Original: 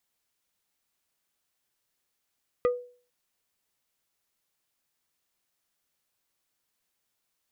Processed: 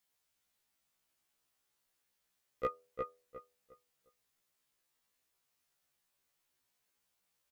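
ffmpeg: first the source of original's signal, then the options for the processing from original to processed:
-f lavfi -i "aevalsrc='0.126*pow(10,-3*t/0.43)*sin(2*PI*491*t)+0.0501*pow(10,-3*t/0.143)*sin(2*PI*1227.5*t)+0.02*pow(10,-3*t/0.081)*sin(2*PI*1964*t)+0.00794*pow(10,-3*t/0.062)*sin(2*PI*2455*t)+0.00316*pow(10,-3*t/0.045)*sin(2*PI*3191.5*t)':duration=0.45:sample_rate=44100"
-filter_complex "[0:a]equalizer=frequency=300:width_type=o:width=0.85:gain=-2,asplit=2[link_01][link_02];[link_02]adelay=356,lowpass=frequency=2400:poles=1,volume=-3.5dB,asplit=2[link_03][link_04];[link_04]adelay=356,lowpass=frequency=2400:poles=1,volume=0.28,asplit=2[link_05][link_06];[link_06]adelay=356,lowpass=frequency=2400:poles=1,volume=0.28,asplit=2[link_07][link_08];[link_08]adelay=356,lowpass=frequency=2400:poles=1,volume=0.28[link_09];[link_03][link_05][link_07][link_09]amix=inputs=4:normalize=0[link_10];[link_01][link_10]amix=inputs=2:normalize=0,afftfilt=real='re*1.73*eq(mod(b,3),0)':imag='im*1.73*eq(mod(b,3),0)':win_size=2048:overlap=0.75"

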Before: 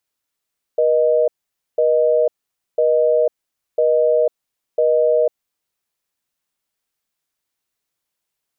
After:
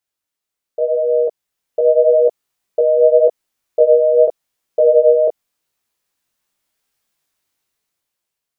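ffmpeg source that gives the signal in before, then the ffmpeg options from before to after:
-f lavfi -i "aevalsrc='0.178*(sin(2*PI*480*t)+sin(2*PI*620*t))*clip(min(mod(t,1),0.5-mod(t,1))/0.005,0,1)':duration=4.57:sample_rate=44100"
-af "dynaudnorm=framelen=440:gausssize=7:maxgain=12dB,flanger=delay=16.5:depth=7.3:speed=0.86"

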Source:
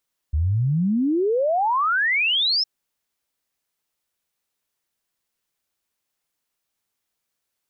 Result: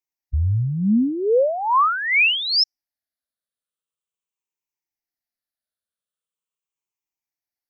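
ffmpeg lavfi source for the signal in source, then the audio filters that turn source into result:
-f lavfi -i "aevalsrc='0.133*clip(min(t,2.31-t)/0.01,0,1)*sin(2*PI*71*2.31/log(5400/71)*(exp(log(5400/71)*t/2.31)-1))':duration=2.31:sample_rate=44100"
-af "afftfilt=real='re*pow(10,12/40*sin(2*PI*(0.72*log(max(b,1)*sr/1024/100)/log(2)-(-0.42)*(pts-256)/sr)))':imag='im*pow(10,12/40*sin(2*PI*(0.72*log(max(b,1)*sr/1024/100)/log(2)-(-0.42)*(pts-256)/sr)))':win_size=1024:overlap=0.75,afftdn=noise_reduction=15:noise_floor=-34"

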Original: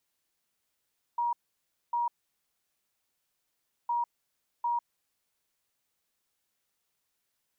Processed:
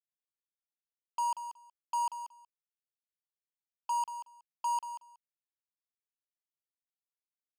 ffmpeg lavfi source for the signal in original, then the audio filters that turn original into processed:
-f lavfi -i "aevalsrc='0.0501*sin(2*PI*951*t)*clip(min(mod(mod(t,2.71),0.75),0.15-mod(mod(t,2.71),0.75))/0.005,0,1)*lt(mod(t,2.71),1.5)':duration=5.42:sample_rate=44100"
-filter_complex "[0:a]highpass=frequency=710:width=0.5412,highpass=frequency=710:width=1.3066,acrusher=bits=5:mix=0:aa=0.5,asplit=2[link_01][link_02];[link_02]aecho=0:1:185|370:0.299|0.0448[link_03];[link_01][link_03]amix=inputs=2:normalize=0"

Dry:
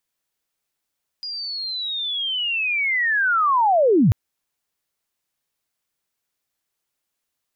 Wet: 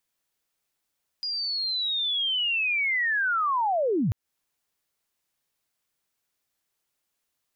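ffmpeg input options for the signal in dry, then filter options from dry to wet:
-f lavfi -i "aevalsrc='pow(10,(-27.5+16*t/2.89)/20)*sin(2*PI*(4900*t-4815*t*t/(2*2.89)))':duration=2.89:sample_rate=44100"
-af "acompressor=threshold=-24dB:ratio=6"

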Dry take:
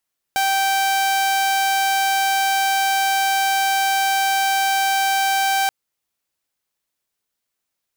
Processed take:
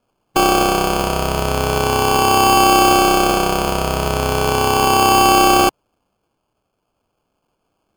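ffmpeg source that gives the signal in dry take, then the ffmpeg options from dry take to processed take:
-f lavfi -i "aevalsrc='0.2*(2*mod(780*t,1)-1)':duration=5.33:sample_rate=44100"
-af "afftfilt=real='re*pow(10,17/40*sin(2*PI*(1.1*log(max(b,1)*sr/1024/100)/log(2)-(0.38)*(pts-256)/sr)))':imag='im*pow(10,17/40*sin(2*PI*(1.1*log(max(b,1)*sr/1024/100)/log(2)-(0.38)*(pts-256)/sr)))':win_size=1024:overlap=0.75,highshelf=frequency=9100:gain=8.5,acrusher=samples=23:mix=1:aa=0.000001"

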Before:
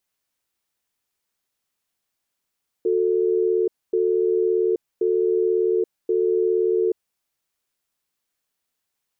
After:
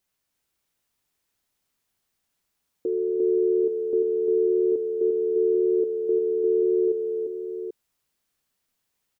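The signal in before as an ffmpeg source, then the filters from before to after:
-f lavfi -i "aevalsrc='0.1*(sin(2*PI*365*t)+sin(2*PI*443*t))*clip(min(mod(t,1.08),0.83-mod(t,1.08))/0.005,0,1)':duration=4.08:sample_rate=44100"
-af "lowshelf=frequency=260:gain=5.5,alimiter=limit=-19.5dB:level=0:latency=1:release=26,aecho=1:1:348|788:0.631|0.447"

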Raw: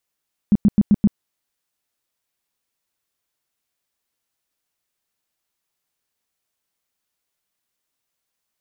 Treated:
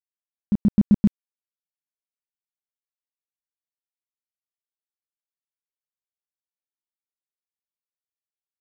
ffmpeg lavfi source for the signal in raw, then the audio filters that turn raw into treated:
-f lavfi -i "aevalsrc='0.355*sin(2*PI*206*mod(t,0.13))*lt(mod(t,0.13),7/206)':duration=0.65:sample_rate=44100"
-af "aeval=exprs='sgn(val(0))*max(abs(val(0))-0.00708,0)':channel_layout=same,tremolo=f=1.1:d=0.48,areverse,acompressor=mode=upward:threshold=-35dB:ratio=2.5,areverse"

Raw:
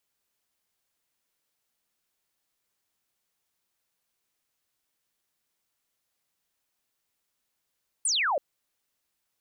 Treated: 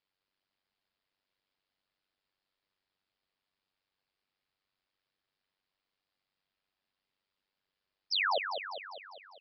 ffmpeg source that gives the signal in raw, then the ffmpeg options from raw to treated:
-f lavfi -i "aevalsrc='0.0708*clip(t/0.002,0,1)*clip((0.33-t)/0.002,0,1)*sin(2*PI*9700*0.33/log(520/9700)*(exp(log(520/9700)*t/0.33)-1))':duration=0.33:sample_rate=44100"
-filter_complex "[0:a]tremolo=f=96:d=0.824,asplit=2[link_01][link_02];[link_02]aecho=0:1:200|400|600|800|1000|1200|1400:0.447|0.259|0.15|0.0872|0.0505|0.0293|0.017[link_03];[link_01][link_03]amix=inputs=2:normalize=0,aresample=11025,aresample=44100"

